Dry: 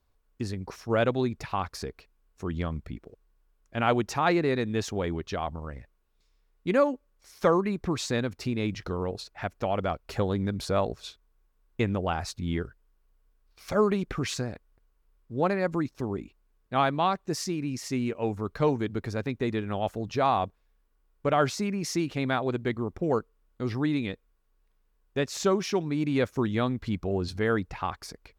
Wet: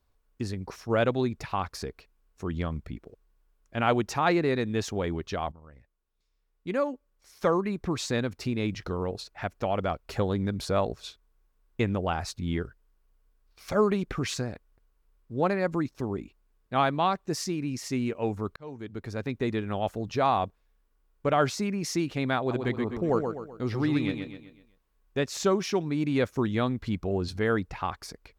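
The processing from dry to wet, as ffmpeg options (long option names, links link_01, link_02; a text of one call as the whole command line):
ffmpeg -i in.wav -filter_complex "[0:a]asettb=1/sr,asplit=3[link_01][link_02][link_03];[link_01]atrim=end=22.384[link_04];[link_02]atrim=start=22.38:end=25.25,asetpts=PTS-STARTPTS,afade=type=in:duration=0.004:curve=qsin,afade=type=out:start_time=2.866:duration=0.004:curve=qsin,aecho=1:1:127|254|381|508|635:0.501|0.216|0.0927|0.0398|0.0171,atrim=end_sample=126567[link_05];[link_03]atrim=start=25.246[link_06];[link_04][link_05]acrossfade=duration=0.004:curve1=hsin:curve2=qsin[link_07];[link_07][link_06]acrossfade=duration=0.004:curve1=qsin:curve2=hsin,asplit=3[link_08][link_09][link_10];[link_08]atrim=end=5.52,asetpts=PTS-STARTPTS,afade=type=out:start_time=5.516:duration=0.004:curve=hsin:silence=0.16788[link_11];[link_09]atrim=start=5.52:end=18.56,asetpts=PTS-STARTPTS,afade=type=in:duration=2.67:silence=0.16788,afade=type=out:start_time=13.036:duration=0.004:curve=hsin[link_12];[link_10]atrim=start=18.56,asetpts=PTS-STARTPTS,afade=type=in:duration=0.81[link_13];[link_11][link_12][link_13]concat=n=3:v=0:a=1" out.wav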